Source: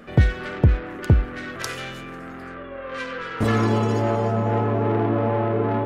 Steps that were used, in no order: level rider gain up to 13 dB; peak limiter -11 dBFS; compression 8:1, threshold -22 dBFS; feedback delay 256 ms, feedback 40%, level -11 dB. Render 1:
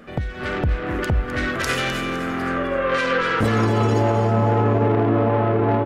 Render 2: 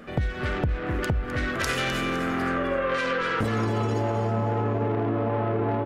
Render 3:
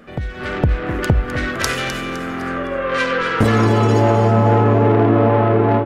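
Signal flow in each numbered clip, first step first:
compression > level rider > peak limiter > feedback delay; level rider > peak limiter > feedback delay > compression; peak limiter > compression > level rider > feedback delay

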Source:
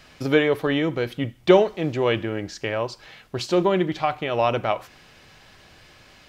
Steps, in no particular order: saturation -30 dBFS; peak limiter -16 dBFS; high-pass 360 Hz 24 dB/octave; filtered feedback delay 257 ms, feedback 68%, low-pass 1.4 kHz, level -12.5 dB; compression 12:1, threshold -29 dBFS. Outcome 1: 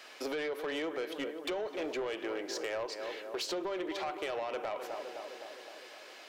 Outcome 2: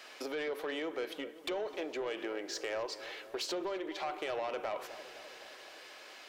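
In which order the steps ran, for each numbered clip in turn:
high-pass > peak limiter > filtered feedback delay > compression > saturation; peak limiter > compression > high-pass > saturation > filtered feedback delay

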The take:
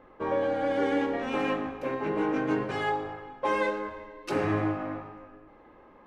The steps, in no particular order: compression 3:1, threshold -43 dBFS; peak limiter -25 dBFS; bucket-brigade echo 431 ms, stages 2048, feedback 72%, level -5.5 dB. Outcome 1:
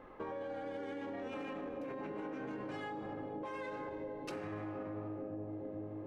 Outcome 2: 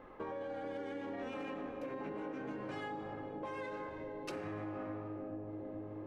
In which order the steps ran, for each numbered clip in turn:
bucket-brigade echo > peak limiter > compression; peak limiter > bucket-brigade echo > compression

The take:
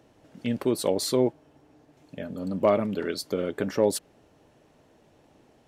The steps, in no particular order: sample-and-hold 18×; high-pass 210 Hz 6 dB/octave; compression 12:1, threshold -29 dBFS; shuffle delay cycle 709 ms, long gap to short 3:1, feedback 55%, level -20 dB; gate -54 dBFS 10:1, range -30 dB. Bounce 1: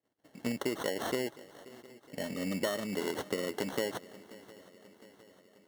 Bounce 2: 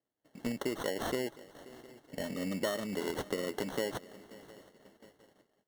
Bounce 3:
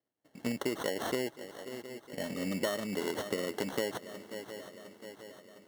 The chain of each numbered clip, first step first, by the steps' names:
sample-and-hold > gate > high-pass > compression > shuffle delay; compression > high-pass > sample-and-hold > shuffle delay > gate; sample-and-hold > high-pass > gate > shuffle delay > compression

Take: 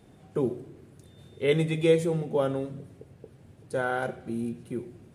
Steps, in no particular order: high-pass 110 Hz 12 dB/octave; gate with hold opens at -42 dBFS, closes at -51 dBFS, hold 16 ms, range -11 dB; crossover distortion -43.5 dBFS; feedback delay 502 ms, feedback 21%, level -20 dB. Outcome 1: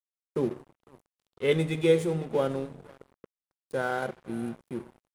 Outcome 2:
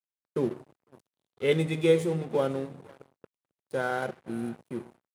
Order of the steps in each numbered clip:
feedback delay > gate with hold > high-pass > crossover distortion; feedback delay > crossover distortion > gate with hold > high-pass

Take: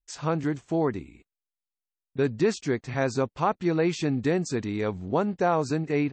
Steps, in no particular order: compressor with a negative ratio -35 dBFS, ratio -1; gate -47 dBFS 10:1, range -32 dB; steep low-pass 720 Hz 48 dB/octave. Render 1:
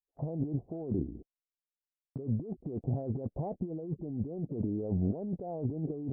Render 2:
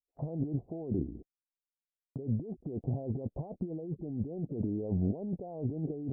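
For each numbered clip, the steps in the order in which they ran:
steep low-pass > compressor with a negative ratio > gate; compressor with a negative ratio > steep low-pass > gate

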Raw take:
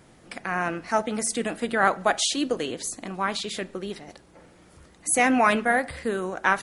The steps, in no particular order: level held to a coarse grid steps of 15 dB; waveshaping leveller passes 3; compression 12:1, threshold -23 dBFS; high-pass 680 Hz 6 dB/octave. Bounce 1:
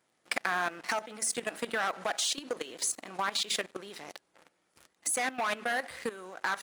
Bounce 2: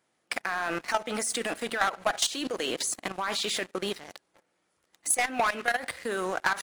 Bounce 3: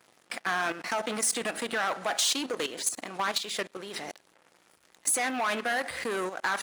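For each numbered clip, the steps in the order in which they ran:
waveshaping leveller > compression > high-pass > level held to a coarse grid; high-pass > waveshaping leveller > level held to a coarse grid > compression; level held to a coarse grid > waveshaping leveller > compression > high-pass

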